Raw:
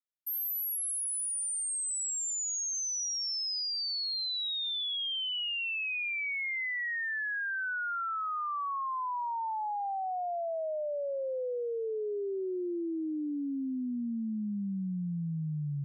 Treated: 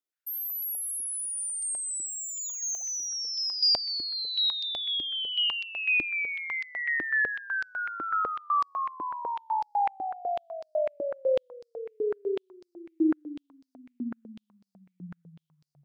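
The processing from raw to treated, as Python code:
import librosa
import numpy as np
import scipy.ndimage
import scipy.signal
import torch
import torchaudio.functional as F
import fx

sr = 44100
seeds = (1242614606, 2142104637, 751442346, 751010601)

y = fx.clip_hard(x, sr, threshold_db=-35.5, at=(2.06, 2.83))
y = y + 10.0 ** (-11.0 / 20.0) * np.pad(y, (int(251 * sr / 1000.0), 0))[:len(y)]
y = fx.filter_held_highpass(y, sr, hz=8.0, low_hz=320.0, high_hz=4800.0)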